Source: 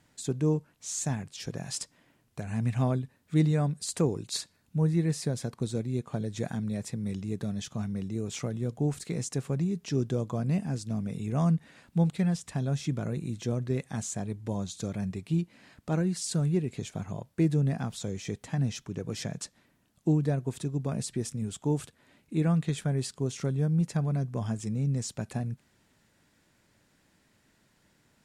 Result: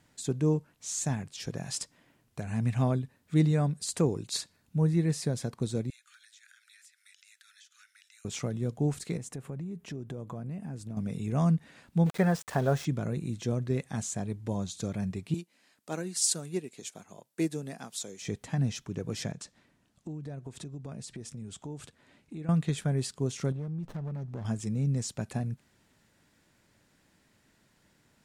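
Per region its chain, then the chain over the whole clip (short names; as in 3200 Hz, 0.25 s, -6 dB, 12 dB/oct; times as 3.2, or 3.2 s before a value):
5.9–8.25 steep high-pass 1400 Hz 72 dB/oct + compressor 16:1, threshold -53 dBFS
9.17–10.97 bell 5200 Hz -10 dB 1.4 oct + compressor, threshold -35 dBFS
12.06–12.85 band shelf 850 Hz +11 dB 2.6 oct + sample gate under -41 dBFS
15.34–18.22 HPF 270 Hz + high shelf 4200 Hz +12 dB + upward expander, over -48 dBFS
19.32–22.49 LPF 9400 Hz + compressor 4:1, threshold -39 dBFS
23.52–24.45 compressor 5:1, threshold -34 dBFS + air absorption 63 m + running maximum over 17 samples
whole clip: dry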